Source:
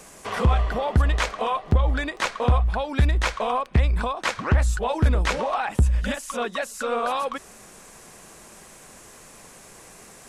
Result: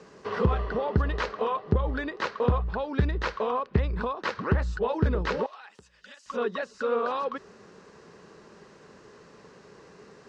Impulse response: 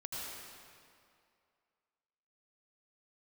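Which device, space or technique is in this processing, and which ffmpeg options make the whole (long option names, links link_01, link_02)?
guitar cabinet: -filter_complex "[0:a]highpass=77,equalizer=frequency=180:width_type=q:width=4:gain=4,equalizer=frequency=420:width_type=q:width=4:gain=9,equalizer=frequency=710:width_type=q:width=4:gain=-7,equalizer=frequency=2300:width_type=q:width=4:gain=-8,equalizer=frequency=3400:width_type=q:width=4:gain=-7,lowpass=frequency=4600:width=0.5412,lowpass=frequency=4600:width=1.3066,asettb=1/sr,asplit=3[link_01][link_02][link_03];[link_01]atrim=end=5.464[link_04];[link_02]atrim=start=5.46:end=6.26,asetpts=PTS-STARTPTS,afade=type=in:duration=0.004:curve=qsin,afade=type=out:start_time=0.796:duration=0.004:curve=qsin,aderivative[link_05];[link_03]atrim=start=6.256[link_06];[link_04][link_05]acrossfade=duration=0.004:curve1=hsin:curve2=qsin[link_07];[link_07][link_06]acrossfade=duration=0.004:curve1=qsin:curve2=hsin,volume=-3dB"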